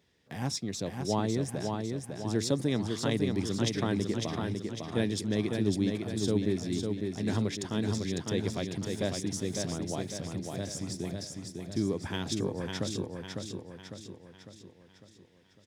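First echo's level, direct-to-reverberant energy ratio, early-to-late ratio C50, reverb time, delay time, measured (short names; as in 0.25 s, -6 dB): -4.5 dB, none, none, none, 0.552 s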